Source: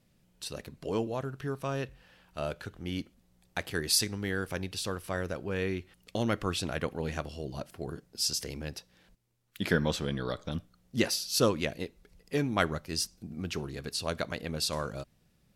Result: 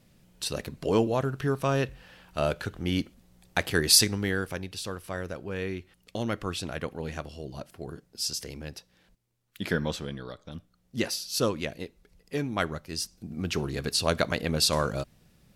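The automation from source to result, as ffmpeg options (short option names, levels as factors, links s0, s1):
-af "volume=15,afade=t=out:st=4.01:d=0.61:silence=0.375837,afade=t=out:st=9.88:d=0.5:silence=0.421697,afade=t=in:st=10.38:d=0.68:silence=0.421697,afade=t=in:st=13.01:d=0.78:silence=0.375837"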